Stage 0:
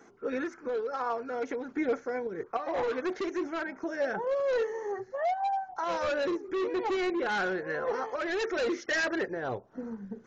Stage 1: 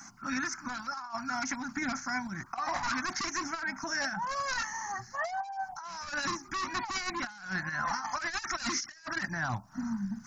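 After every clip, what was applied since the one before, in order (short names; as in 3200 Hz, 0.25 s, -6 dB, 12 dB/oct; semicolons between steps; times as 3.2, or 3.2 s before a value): Chebyshev band-stop 200–1000 Hz, order 2; resonant high shelf 4200 Hz +7 dB, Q 3; negative-ratio compressor -40 dBFS, ratio -0.5; gain +6.5 dB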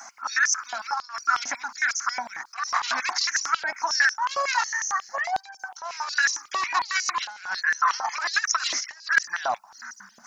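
stepped high-pass 11 Hz 630–6000 Hz; gain +5 dB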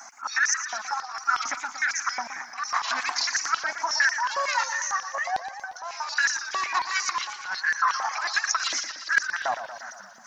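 warbling echo 0.117 s, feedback 63%, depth 130 cents, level -10.5 dB; gain -1.5 dB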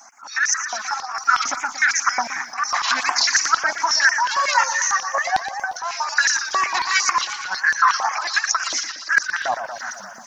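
AGC gain up to 13 dB; LFO notch sine 2 Hz 510–4100 Hz; gain -1 dB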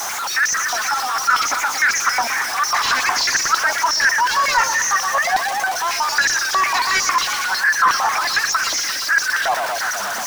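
zero-crossing step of -18.5 dBFS; pre-emphasis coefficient 0.8; overdrive pedal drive 20 dB, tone 1300 Hz, clips at -2.5 dBFS; gain +3 dB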